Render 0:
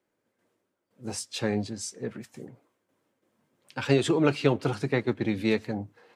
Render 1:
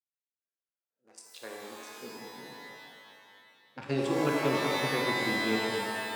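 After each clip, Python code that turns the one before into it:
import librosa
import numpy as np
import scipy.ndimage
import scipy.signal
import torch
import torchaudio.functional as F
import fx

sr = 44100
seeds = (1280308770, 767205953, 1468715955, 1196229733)

y = fx.wiener(x, sr, points=41)
y = fx.filter_sweep_highpass(y, sr, from_hz=3300.0, to_hz=160.0, start_s=0.16, end_s=2.51, q=0.79)
y = fx.rev_shimmer(y, sr, seeds[0], rt60_s=2.2, semitones=12, shimmer_db=-2, drr_db=-0.5)
y = y * librosa.db_to_amplitude(-8.5)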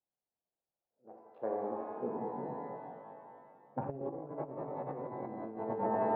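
y = fx.peak_eq(x, sr, hz=160.0, db=6.0, octaves=0.46)
y = fx.over_compress(y, sr, threshold_db=-35.0, ratio=-0.5)
y = fx.ladder_lowpass(y, sr, hz=900.0, resonance_pct=45)
y = y * librosa.db_to_amplitude(8.0)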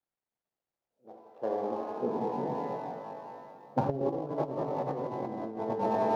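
y = scipy.ndimage.median_filter(x, 15, mode='constant')
y = fx.rider(y, sr, range_db=5, speed_s=2.0)
y = y * librosa.db_to_amplitude(6.0)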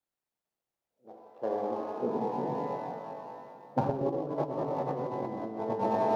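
y = x + 10.0 ** (-10.5 / 20.0) * np.pad(x, (int(124 * sr / 1000.0), 0))[:len(x)]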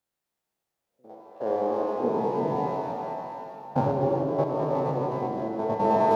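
y = fx.spec_steps(x, sr, hold_ms=50)
y = fx.rev_gated(y, sr, seeds[1], gate_ms=410, shape='flat', drr_db=3.0)
y = y * librosa.db_to_amplitude(5.5)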